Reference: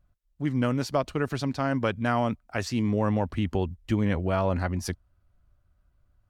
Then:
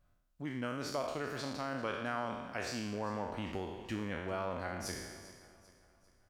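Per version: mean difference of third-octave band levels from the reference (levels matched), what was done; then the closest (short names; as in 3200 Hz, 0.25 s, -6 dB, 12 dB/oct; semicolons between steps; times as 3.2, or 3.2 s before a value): 9.0 dB: spectral trails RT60 0.94 s; low shelf 210 Hz -9.5 dB; compressor 1.5:1, threshold -55 dBFS, peak gain reduction 12.5 dB; on a send: feedback echo 0.395 s, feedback 44%, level -17 dB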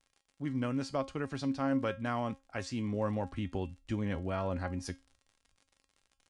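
2.0 dB: gate -59 dBFS, range -12 dB; crackle 79/s -41 dBFS; resonator 270 Hz, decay 0.24 s, harmonics all, mix 70%; downsampling 22050 Hz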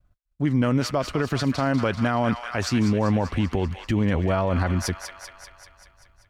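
4.0 dB: thin delay 0.194 s, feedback 64%, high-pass 1400 Hz, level -7.5 dB; limiter -21 dBFS, peak gain reduction 8 dB; expander -60 dBFS; high shelf 7900 Hz -5 dB; gain +7.5 dB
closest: second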